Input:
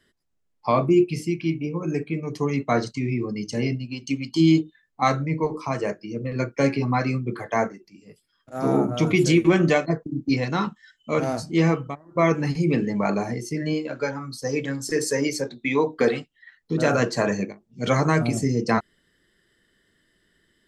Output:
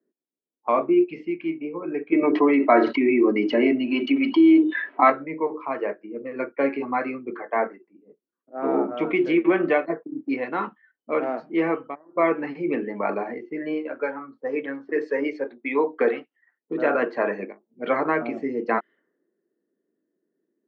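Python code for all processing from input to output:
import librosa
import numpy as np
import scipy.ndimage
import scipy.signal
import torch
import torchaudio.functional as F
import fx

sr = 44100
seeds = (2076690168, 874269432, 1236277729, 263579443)

y = fx.chain(x, sr, fx.bandpass_edges(low_hz=140.0, high_hz=4000.0),
    fx.comb(ms=3.1, depth=0.59),
    fx.env_flatten(amount_pct=70), at=(2.12, 5.1))
y = scipy.signal.sosfilt(scipy.signal.butter(4, 2400.0, 'lowpass', fs=sr, output='sos'), y)
y = fx.env_lowpass(y, sr, base_hz=360.0, full_db=-20.5)
y = scipy.signal.sosfilt(scipy.signal.butter(4, 280.0, 'highpass', fs=sr, output='sos'), y)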